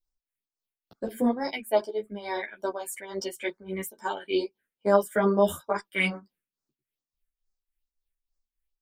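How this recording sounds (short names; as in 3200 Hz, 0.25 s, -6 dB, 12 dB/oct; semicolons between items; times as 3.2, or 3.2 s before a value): phasing stages 4, 2.3 Hz, lowest notch 800–2800 Hz; tremolo triangle 3.5 Hz, depth 80%; a shimmering, thickened sound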